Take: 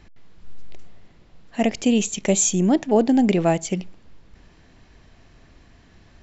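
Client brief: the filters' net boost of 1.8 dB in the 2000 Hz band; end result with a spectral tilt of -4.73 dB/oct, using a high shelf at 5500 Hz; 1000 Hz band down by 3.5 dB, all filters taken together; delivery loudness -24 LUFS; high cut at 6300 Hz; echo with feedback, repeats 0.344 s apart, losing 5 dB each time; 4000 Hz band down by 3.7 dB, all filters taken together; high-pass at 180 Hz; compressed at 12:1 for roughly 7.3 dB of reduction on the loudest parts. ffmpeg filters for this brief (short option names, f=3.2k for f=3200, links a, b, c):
-af "highpass=180,lowpass=6.3k,equalizer=f=1k:t=o:g=-6,equalizer=f=2k:t=o:g=6,equalizer=f=4k:t=o:g=-5.5,highshelf=f=5.5k:g=-5,acompressor=threshold=-22dB:ratio=12,aecho=1:1:344|688|1032|1376|1720|2064|2408:0.562|0.315|0.176|0.0988|0.0553|0.031|0.0173,volume=3.5dB"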